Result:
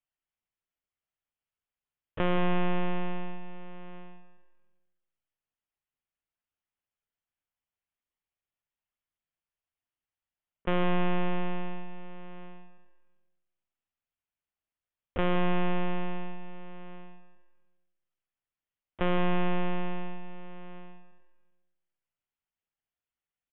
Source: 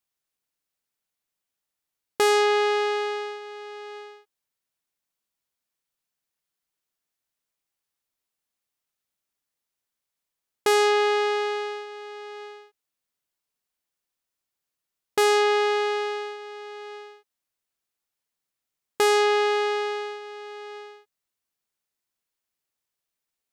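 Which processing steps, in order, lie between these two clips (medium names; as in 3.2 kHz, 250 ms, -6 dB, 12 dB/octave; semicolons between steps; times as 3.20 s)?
monotone LPC vocoder at 8 kHz 200 Hz; on a send: feedback delay 174 ms, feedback 41%, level -13 dB; on the sum: spring tank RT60 1.2 s, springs 45/56 ms, chirp 20 ms, DRR 13 dB; pitch shift -2 st; trim -6.5 dB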